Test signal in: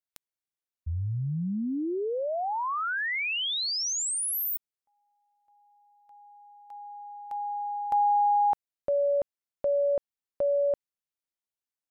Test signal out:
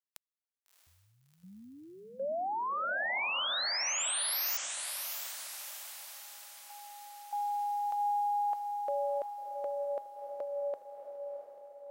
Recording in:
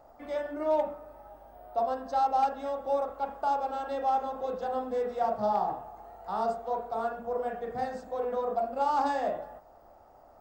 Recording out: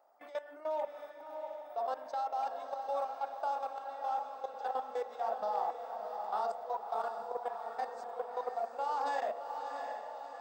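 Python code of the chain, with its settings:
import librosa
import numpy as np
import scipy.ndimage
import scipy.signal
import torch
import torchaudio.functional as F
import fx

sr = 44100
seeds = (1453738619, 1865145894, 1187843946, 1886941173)

y = scipy.signal.sosfilt(scipy.signal.butter(2, 600.0, 'highpass', fs=sr, output='sos'), x)
y = fx.level_steps(y, sr, step_db=17)
y = fx.echo_diffused(y, sr, ms=676, feedback_pct=54, wet_db=-6.0)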